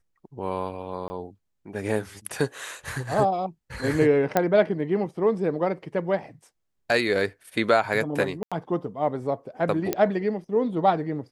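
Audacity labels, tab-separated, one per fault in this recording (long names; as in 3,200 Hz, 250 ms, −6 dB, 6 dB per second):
1.080000	1.100000	drop-out 20 ms
4.370000	4.370000	click −7 dBFS
8.430000	8.520000	drop-out 86 ms
9.930000	9.930000	click −9 dBFS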